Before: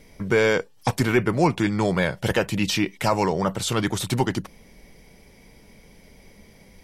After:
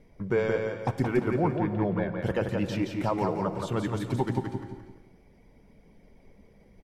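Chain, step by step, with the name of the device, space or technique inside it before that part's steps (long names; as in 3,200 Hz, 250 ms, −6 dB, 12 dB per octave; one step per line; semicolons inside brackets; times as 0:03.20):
reverb reduction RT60 0.78 s
through cloth (high-shelf EQ 2,200 Hz −17 dB)
0:01.38–0:02.12: high-frequency loss of the air 260 metres
repeating echo 172 ms, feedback 33%, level −4.5 dB
reverb whose tail is shaped and stops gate 430 ms flat, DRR 10.5 dB
level −4.5 dB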